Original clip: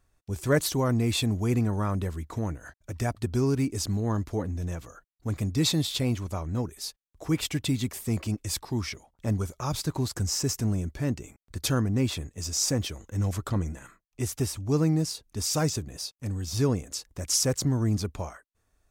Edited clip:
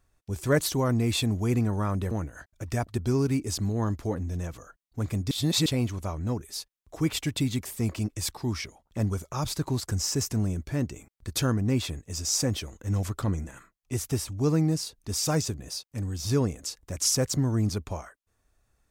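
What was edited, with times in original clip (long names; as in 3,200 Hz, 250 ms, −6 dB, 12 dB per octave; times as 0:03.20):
0:02.11–0:02.39: remove
0:05.59–0:05.94: reverse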